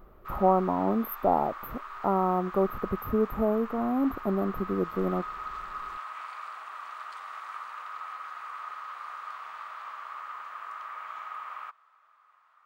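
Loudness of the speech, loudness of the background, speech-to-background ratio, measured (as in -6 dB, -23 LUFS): -28.0 LUFS, -40.0 LUFS, 12.0 dB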